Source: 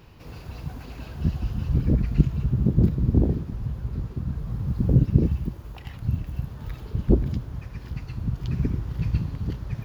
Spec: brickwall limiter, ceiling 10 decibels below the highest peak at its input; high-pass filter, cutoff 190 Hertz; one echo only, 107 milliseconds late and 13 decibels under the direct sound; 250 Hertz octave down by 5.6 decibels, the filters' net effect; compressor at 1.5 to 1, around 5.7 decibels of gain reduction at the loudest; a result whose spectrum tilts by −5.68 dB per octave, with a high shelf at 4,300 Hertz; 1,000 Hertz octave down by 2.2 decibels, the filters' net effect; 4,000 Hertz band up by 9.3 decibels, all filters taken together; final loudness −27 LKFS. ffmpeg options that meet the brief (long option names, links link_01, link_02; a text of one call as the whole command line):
ffmpeg -i in.wav -af "highpass=190,equalizer=frequency=250:width_type=o:gain=-4.5,equalizer=frequency=1000:width_type=o:gain=-3.5,equalizer=frequency=4000:width_type=o:gain=8.5,highshelf=frequency=4300:gain=6.5,acompressor=threshold=-35dB:ratio=1.5,alimiter=level_in=2.5dB:limit=-24dB:level=0:latency=1,volume=-2.5dB,aecho=1:1:107:0.224,volume=12.5dB" out.wav